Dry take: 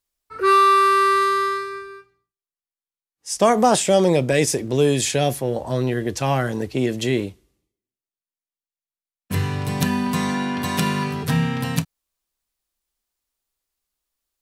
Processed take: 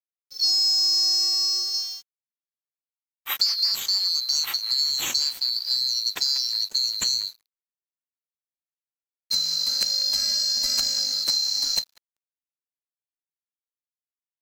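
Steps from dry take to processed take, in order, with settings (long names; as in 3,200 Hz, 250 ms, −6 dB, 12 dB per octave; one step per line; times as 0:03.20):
neighbouring bands swapped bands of 4,000 Hz
0:01.74–0:03.86: high-shelf EQ 3,000 Hz +5 dB
bit reduction 9 bits
downward compressor 10 to 1, threshold −23 dBFS, peak gain reduction 16 dB
feedback echo with a band-pass in the loop 190 ms, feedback 58%, band-pass 1,300 Hz, level −13 dB
dead-zone distortion −41.5 dBFS
dynamic equaliser 5,800 Hz, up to +6 dB, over −40 dBFS, Q 1.1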